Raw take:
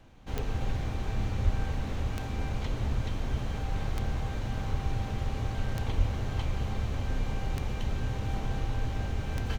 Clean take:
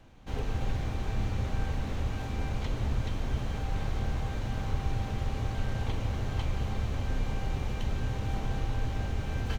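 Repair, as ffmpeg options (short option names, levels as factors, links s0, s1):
-filter_complex "[0:a]adeclick=t=4,asplit=3[s0][s1][s2];[s0]afade=t=out:st=1.44:d=0.02[s3];[s1]highpass=f=140:w=0.5412,highpass=f=140:w=1.3066,afade=t=in:st=1.44:d=0.02,afade=t=out:st=1.56:d=0.02[s4];[s2]afade=t=in:st=1.56:d=0.02[s5];[s3][s4][s5]amix=inputs=3:normalize=0,asplit=3[s6][s7][s8];[s6]afade=t=out:st=5.97:d=0.02[s9];[s7]highpass=f=140:w=0.5412,highpass=f=140:w=1.3066,afade=t=in:st=5.97:d=0.02,afade=t=out:st=6.09:d=0.02[s10];[s8]afade=t=in:st=6.09:d=0.02[s11];[s9][s10][s11]amix=inputs=3:normalize=0"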